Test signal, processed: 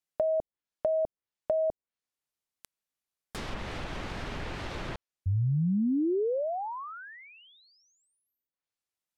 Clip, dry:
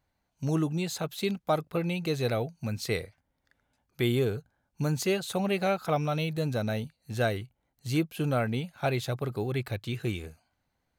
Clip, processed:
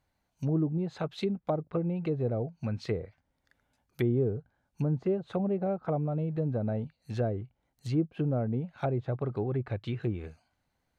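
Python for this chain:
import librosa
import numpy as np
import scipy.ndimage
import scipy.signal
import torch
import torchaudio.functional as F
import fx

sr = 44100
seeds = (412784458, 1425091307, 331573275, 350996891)

y = fx.env_lowpass_down(x, sr, base_hz=540.0, full_db=-25.0)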